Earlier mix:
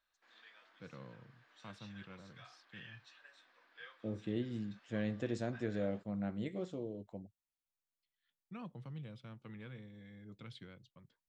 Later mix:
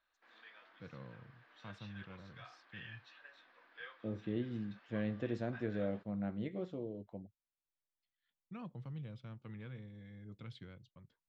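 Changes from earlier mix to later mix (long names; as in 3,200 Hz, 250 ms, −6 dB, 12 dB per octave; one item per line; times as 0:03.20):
first voice: remove band-pass filter 120–4,200 Hz
background +4.5 dB
master: add high-frequency loss of the air 180 metres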